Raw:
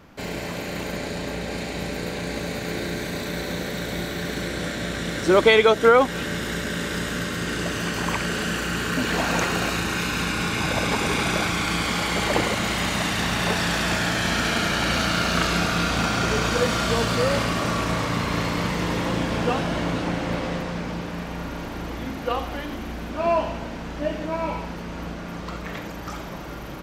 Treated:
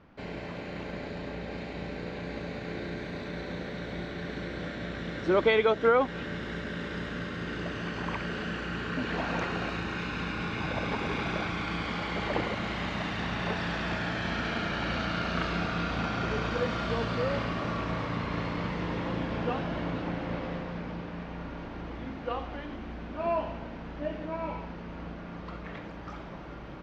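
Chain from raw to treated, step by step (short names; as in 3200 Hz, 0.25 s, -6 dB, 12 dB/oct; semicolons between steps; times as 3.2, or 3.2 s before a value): air absorption 220 m; gain -7 dB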